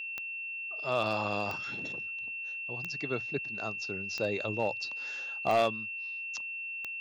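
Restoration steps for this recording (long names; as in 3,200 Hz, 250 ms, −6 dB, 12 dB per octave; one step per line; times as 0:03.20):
clipped peaks rebuilt −20 dBFS
click removal
notch filter 2,700 Hz, Q 30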